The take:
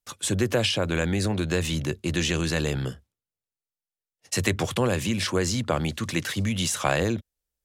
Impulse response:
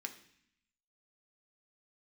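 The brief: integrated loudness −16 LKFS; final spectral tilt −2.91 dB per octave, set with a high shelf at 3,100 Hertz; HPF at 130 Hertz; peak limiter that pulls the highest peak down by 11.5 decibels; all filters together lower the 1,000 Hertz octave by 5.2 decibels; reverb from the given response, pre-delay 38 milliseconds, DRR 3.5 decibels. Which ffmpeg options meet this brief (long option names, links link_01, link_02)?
-filter_complex "[0:a]highpass=130,equalizer=frequency=1000:width_type=o:gain=-8.5,highshelf=frequency=3100:gain=8.5,alimiter=limit=-13dB:level=0:latency=1,asplit=2[link_01][link_02];[1:a]atrim=start_sample=2205,adelay=38[link_03];[link_02][link_03]afir=irnorm=-1:irlink=0,volume=-2dB[link_04];[link_01][link_04]amix=inputs=2:normalize=0,volume=8.5dB"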